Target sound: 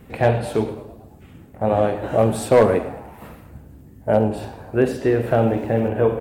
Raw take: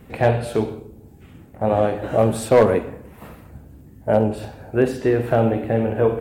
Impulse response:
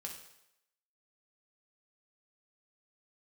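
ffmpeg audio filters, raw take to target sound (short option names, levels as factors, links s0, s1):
-filter_complex "[0:a]asplit=6[s0][s1][s2][s3][s4][s5];[s1]adelay=109,afreqshift=83,volume=0.112[s6];[s2]adelay=218,afreqshift=166,volume=0.0638[s7];[s3]adelay=327,afreqshift=249,volume=0.0363[s8];[s4]adelay=436,afreqshift=332,volume=0.0209[s9];[s5]adelay=545,afreqshift=415,volume=0.0119[s10];[s0][s6][s7][s8][s9][s10]amix=inputs=6:normalize=0,asettb=1/sr,asplit=3[s11][s12][s13];[s11]atrim=end=5.394[s14];[s12]atrim=start=5.39:end=5.88,asetpts=PTS-STARTPTS,afade=t=in:d=0.004:c=qsin,afade=t=out:st=0.486:d=0.004:c=qsin,aeval=exprs='val(0)*gte(abs(val(0)),0.00668)':c=same[s15];[s13]atrim=start=5.876[s16];[s14][s15]acrossfade=d=0.004:c1=hsin:c2=qsin[s17];[s17][s16]acrossfade=d=0.004:c1=qsin:c2=hsin"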